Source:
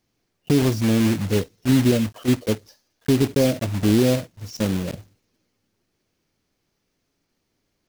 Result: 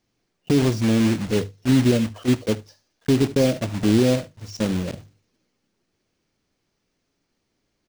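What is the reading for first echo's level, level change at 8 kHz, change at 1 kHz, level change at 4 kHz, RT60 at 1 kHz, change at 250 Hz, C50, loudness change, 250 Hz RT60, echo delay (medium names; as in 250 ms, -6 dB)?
-21.5 dB, -1.5 dB, 0.0 dB, -0.5 dB, no reverb, 0.0 dB, no reverb, 0.0 dB, no reverb, 75 ms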